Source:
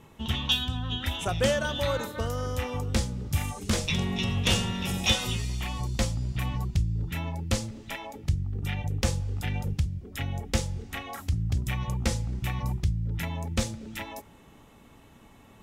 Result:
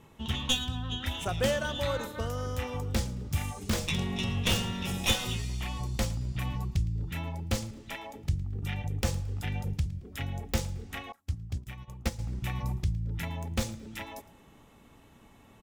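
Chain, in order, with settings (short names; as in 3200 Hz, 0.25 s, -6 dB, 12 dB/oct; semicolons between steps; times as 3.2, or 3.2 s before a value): tracing distortion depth 0.1 ms; feedback echo 0.111 s, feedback 29%, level -20 dB; 11.12–12.19 upward expander 2.5:1, over -43 dBFS; gain -3 dB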